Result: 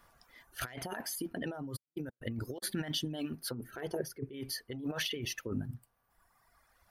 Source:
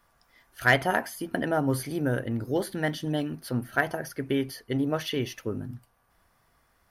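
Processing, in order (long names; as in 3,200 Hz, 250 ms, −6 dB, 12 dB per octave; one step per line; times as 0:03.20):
0:01.75–0:02.62: gate pattern "x.xxx..." 122 BPM −60 dB
dynamic equaliser 3,200 Hz, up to +4 dB, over −47 dBFS, Q 1.5
reverb reduction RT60 1.7 s
0:03.54–0:04.33: drawn EQ curve 270 Hz 0 dB, 430 Hz +8 dB, 620 Hz −6 dB
compressor whose output falls as the input rises −35 dBFS, ratio −1
level −3.5 dB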